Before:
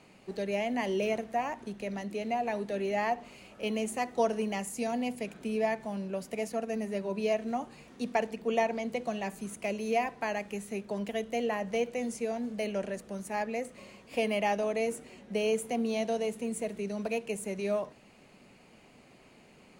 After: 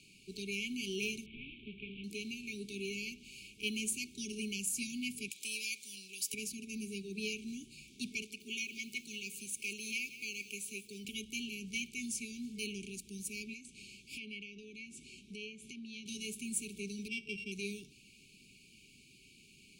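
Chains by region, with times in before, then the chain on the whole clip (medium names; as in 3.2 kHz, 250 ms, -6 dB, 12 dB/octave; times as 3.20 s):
1.26–2.04 s: one-bit delta coder 16 kbps, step -41.5 dBFS + hum notches 50/100/150/200/250/300/350/400/450 Hz
5.30–6.34 s: high-pass 1.5 kHz 6 dB/octave + treble shelf 2.7 kHz +10.5 dB
8.22–11.05 s: bass shelf 270 Hz -11.5 dB + bit-crushed delay 180 ms, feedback 35%, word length 9-bit, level -13.5 dB
13.53–16.06 s: low-pass that closes with the level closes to 2.9 kHz, closed at -24.5 dBFS + compression 2.5:1, threshold -40 dBFS
17.08–17.52 s: sorted samples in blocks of 16 samples + low-pass 2.5 kHz
whole clip: amplifier tone stack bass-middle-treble 5-5-5; FFT band-reject 440–2200 Hz; trim +11 dB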